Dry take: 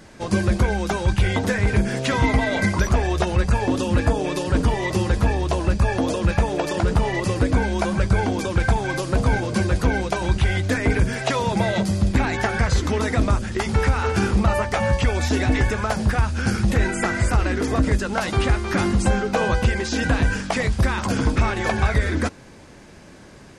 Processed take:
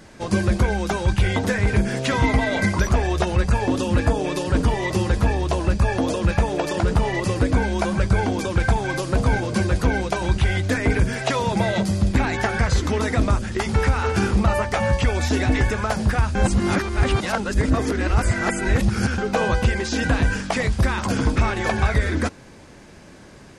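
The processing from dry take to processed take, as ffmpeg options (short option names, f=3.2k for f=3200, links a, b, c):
-filter_complex "[0:a]asplit=3[a][b][c];[a]atrim=end=16.352[d];[b]atrim=start=16.348:end=19.182,asetpts=PTS-STARTPTS,areverse[e];[c]atrim=start=19.178[f];[d][e]acrossfade=d=0.004:c1=hsin:c2=hsin[g];[g][f]acrossfade=d=0.004:c1=hsin:c2=hsin"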